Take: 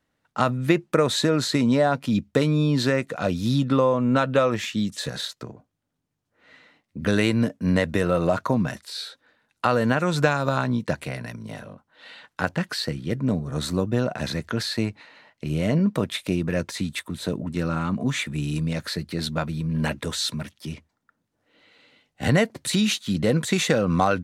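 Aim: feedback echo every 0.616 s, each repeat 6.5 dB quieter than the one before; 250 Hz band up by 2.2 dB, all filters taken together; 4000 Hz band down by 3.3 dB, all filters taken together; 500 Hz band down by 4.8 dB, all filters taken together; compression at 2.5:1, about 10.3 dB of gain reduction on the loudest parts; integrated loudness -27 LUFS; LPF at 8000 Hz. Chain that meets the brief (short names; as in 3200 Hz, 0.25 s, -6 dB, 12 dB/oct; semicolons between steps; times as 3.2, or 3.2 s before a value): LPF 8000 Hz; bell 250 Hz +4.5 dB; bell 500 Hz -7 dB; bell 4000 Hz -3.5 dB; compressor 2.5:1, threshold -31 dBFS; feedback echo 0.616 s, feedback 47%, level -6.5 dB; gain +4.5 dB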